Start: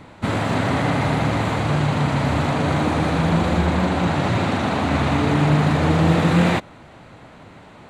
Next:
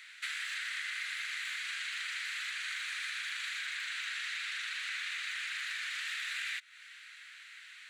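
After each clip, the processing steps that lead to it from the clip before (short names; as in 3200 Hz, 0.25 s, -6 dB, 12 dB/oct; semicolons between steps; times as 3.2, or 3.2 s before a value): steep high-pass 1600 Hz 48 dB/oct; compressor 6:1, threshold -38 dBFS, peak gain reduction 12.5 dB; gain +2 dB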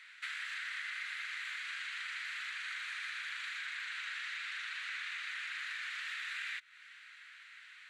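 tilt -3.5 dB/oct; gain +1 dB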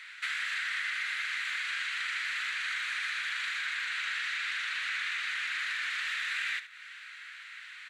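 in parallel at -6 dB: soft clip -38 dBFS, distortion -15 dB; on the sum: echo 72 ms -12.5 dB; gain +4.5 dB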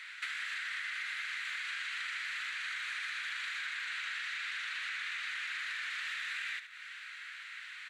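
compressor, threshold -36 dBFS, peak gain reduction 6 dB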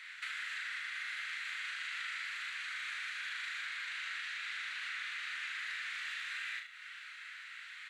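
flutter echo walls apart 6.3 m, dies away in 0.37 s; gain -3.5 dB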